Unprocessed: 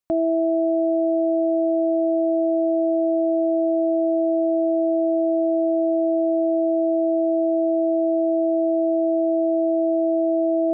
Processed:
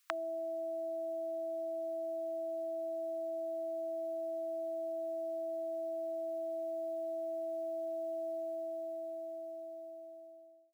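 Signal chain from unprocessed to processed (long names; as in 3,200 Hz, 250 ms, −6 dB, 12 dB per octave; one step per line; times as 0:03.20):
fade-out on the ending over 2.45 s
inverse Chebyshev high-pass filter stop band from 610 Hz, stop band 40 dB
level +16 dB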